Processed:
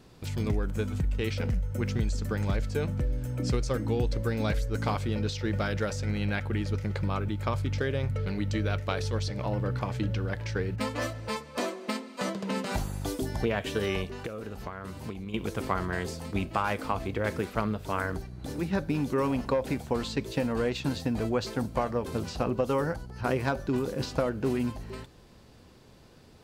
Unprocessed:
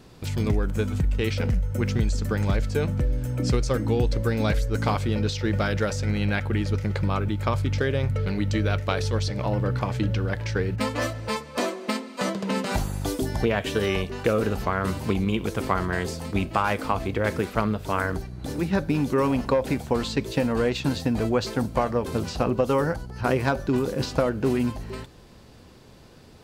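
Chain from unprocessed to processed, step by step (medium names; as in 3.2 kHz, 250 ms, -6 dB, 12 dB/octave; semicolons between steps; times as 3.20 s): 14.06–15.34 s: compression 10:1, threshold -29 dBFS, peak gain reduction 12.5 dB; trim -5 dB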